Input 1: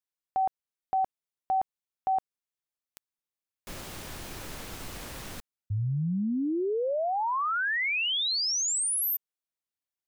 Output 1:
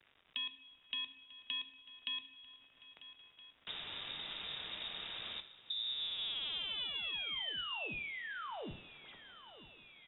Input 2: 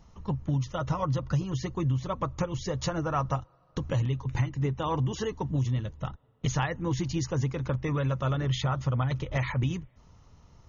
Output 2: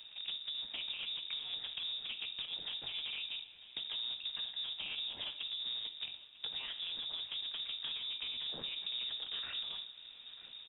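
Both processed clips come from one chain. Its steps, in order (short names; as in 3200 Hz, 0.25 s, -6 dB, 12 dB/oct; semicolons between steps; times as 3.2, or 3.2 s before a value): cycle switcher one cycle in 2, inverted; dynamic EQ 1800 Hz, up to -7 dB, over -48 dBFS, Q 2.1; limiter -24 dBFS; compressor, threshold -34 dBFS; two-slope reverb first 0.54 s, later 4.3 s, from -22 dB, DRR 7.5 dB; crackle 320/s -54 dBFS; on a send: feedback echo 0.944 s, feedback 53%, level -22 dB; on the sum: inverted band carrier 3700 Hz; three-band squash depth 40%; gain -5.5 dB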